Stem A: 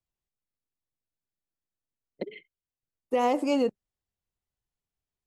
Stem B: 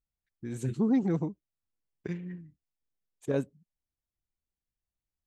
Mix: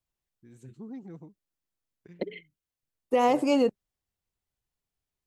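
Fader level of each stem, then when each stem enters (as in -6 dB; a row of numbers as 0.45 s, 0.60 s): +2.0 dB, -16.0 dB; 0.00 s, 0.00 s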